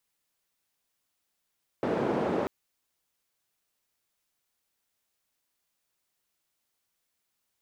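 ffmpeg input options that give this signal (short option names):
-f lavfi -i "anoisesrc=c=white:d=0.64:r=44100:seed=1,highpass=f=200,lowpass=f=490,volume=-5.5dB"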